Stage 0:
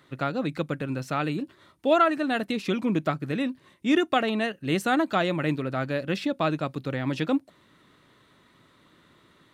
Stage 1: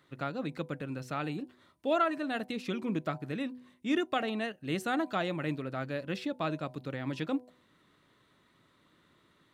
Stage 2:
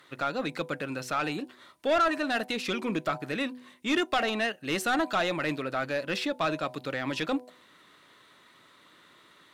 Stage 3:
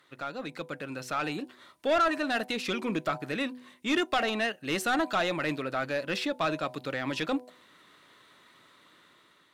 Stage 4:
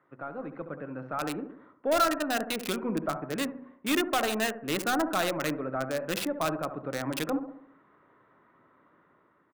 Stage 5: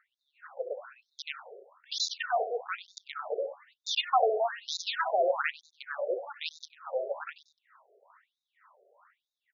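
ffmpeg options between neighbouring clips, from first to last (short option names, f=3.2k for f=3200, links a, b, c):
-af "bandreject=f=124.6:t=h:w=4,bandreject=f=249.2:t=h:w=4,bandreject=f=373.8:t=h:w=4,bandreject=f=498.4:t=h:w=4,bandreject=f=623:t=h:w=4,bandreject=f=747.6:t=h:w=4,bandreject=f=872.2:t=h:w=4,bandreject=f=996.8:t=h:w=4,volume=-7.5dB"
-filter_complex "[0:a]aemphasis=mode=production:type=cd,asplit=2[a][b];[b]highpass=f=720:p=1,volume=17dB,asoftclip=type=tanh:threshold=-16.5dB[c];[a][c]amix=inputs=2:normalize=0,lowpass=f=3.7k:p=1,volume=-6dB"
-af "dynaudnorm=f=390:g=5:m=6dB,volume=-6.5dB"
-filter_complex "[0:a]asplit=2[a][b];[b]adelay=69,lowpass=f=1.9k:p=1,volume=-9dB,asplit=2[c][d];[d]adelay=69,lowpass=f=1.9k:p=1,volume=0.52,asplit=2[e][f];[f]adelay=69,lowpass=f=1.9k:p=1,volume=0.52,asplit=2[g][h];[h]adelay=69,lowpass=f=1.9k:p=1,volume=0.52,asplit=2[i][j];[j]adelay=69,lowpass=f=1.9k:p=1,volume=0.52,asplit=2[k][l];[l]adelay=69,lowpass=f=1.9k:p=1,volume=0.52[m];[a][c][e][g][i][k][m]amix=inputs=7:normalize=0,acrossover=split=100|1600[n][o][p];[p]acrusher=bits=4:mix=0:aa=0.000001[q];[n][o][q]amix=inputs=3:normalize=0"
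-filter_complex "[0:a]asplit=4[a][b][c][d];[b]adelay=96,afreqshift=37,volume=-16dB[e];[c]adelay=192,afreqshift=74,volume=-24.9dB[f];[d]adelay=288,afreqshift=111,volume=-33.7dB[g];[a][e][f][g]amix=inputs=4:normalize=0,afftfilt=real='re*between(b*sr/1024,510*pow(5100/510,0.5+0.5*sin(2*PI*1.1*pts/sr))/1.41,510*pow(5100/510,0.5+0.5*sin(2*PI*1.1*pts/sr))*1.41)':imag='im*between(b*sr/1024,510*pow(5100/510,0.5+0.5*sin(2*PI*1.1*pts/sr))/1.41,510*pow(5100/510,0.5+0.5*sin(2*PI*1.1*pts/sr))*1.41)':win_size=1024:overlap=0.75,volume=6dB"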